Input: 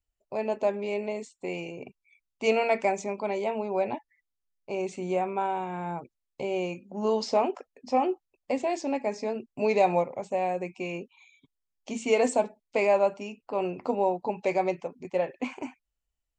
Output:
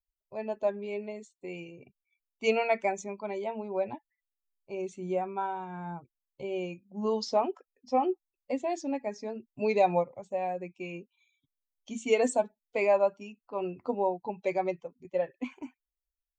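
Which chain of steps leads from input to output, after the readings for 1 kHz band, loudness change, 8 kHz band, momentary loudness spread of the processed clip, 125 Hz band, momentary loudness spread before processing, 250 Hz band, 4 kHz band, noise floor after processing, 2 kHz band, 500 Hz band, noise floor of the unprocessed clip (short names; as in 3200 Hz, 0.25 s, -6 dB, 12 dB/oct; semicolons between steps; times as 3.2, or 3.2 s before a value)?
-3.0 dB, -2.5 dB, -2.5 dB, 16 LU, -3.0 dB, 12 LU, -3.0 dB, -3.0 dB, under -85 dBFS, -3.5 dB, -3.0 dB, -83 dBFS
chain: per-bin expansion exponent 1.5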